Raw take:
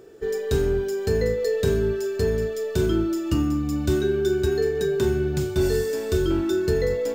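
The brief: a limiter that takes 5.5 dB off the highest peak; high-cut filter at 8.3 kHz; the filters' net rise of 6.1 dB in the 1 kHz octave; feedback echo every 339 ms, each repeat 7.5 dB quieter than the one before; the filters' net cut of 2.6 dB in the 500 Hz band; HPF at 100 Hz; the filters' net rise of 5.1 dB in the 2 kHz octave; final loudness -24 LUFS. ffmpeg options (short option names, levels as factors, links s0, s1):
-af "highpass=100,lowpass=8300,equalizer=f=500:t=o:g=-5,equalizer=f=1000:t=o:g=8.5,equalizer=f=2000:t=o:g=3.5,alimiter=limit=0.133:level=0:latency=1,aecho=1:1:339|678|1017|1356|1695:0.422|0.177|0.0744|0.0312|0.0131,volume=1.26"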